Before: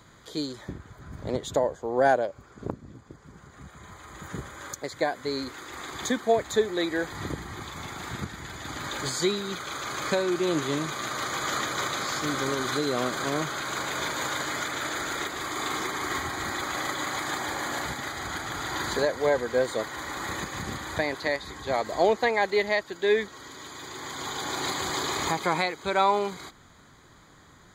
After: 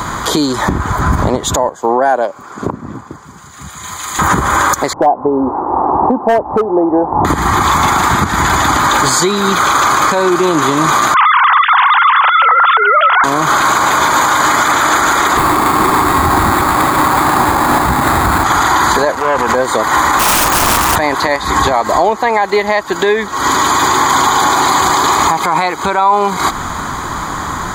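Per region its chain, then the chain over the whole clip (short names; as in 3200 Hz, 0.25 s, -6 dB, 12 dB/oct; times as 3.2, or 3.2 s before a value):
1.69–4.19 HPF 170 Hz + three-band expander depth 100%
4.93–7.25 elliptic low-pass 860 Hz, stop band 80 dB + low shelf 290 Hz -11.5 dB + overloaded stage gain 24 dB
11.14–13.24 sine-wave speech + HPF 1100 Hz + echo 0.348 s -23.5 dB
15.37–18.44 sample-rate reducer 5700 Hz + low shelf 450 Hz +11.5 dB
19.12–19.55 compressor, threshold -32 dBFS + core saturation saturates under 1200 Hz
20.19–20.96 low shelf 320 Hz +5.5 dB + wrapped overs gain 28.5 dB
whole clip: compressor 12:1, threshold -39 dBFS; graphic EQ 125/500/1000/2000/4000 Hz -5/-6/+9/-4/-5 dB; maximiser +34.5 dB; gain -1 dB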